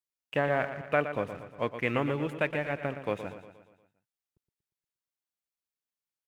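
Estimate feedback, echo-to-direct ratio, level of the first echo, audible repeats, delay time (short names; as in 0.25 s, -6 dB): 53%, -9.0 dB, -10.5 dB, 5, 0.118 s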